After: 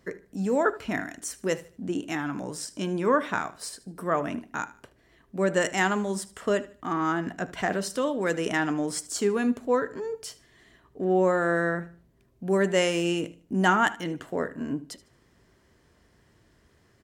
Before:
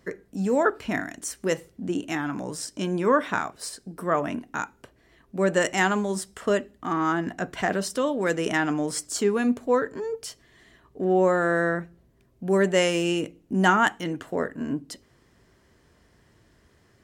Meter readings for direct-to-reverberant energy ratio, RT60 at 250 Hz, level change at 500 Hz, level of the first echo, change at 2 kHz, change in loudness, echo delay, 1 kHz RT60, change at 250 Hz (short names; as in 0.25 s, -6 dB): none, none, -2.0 dB, -18.0 dB, -2.0 dB, -2.0 dB, 76 ms, none, -2.0 dB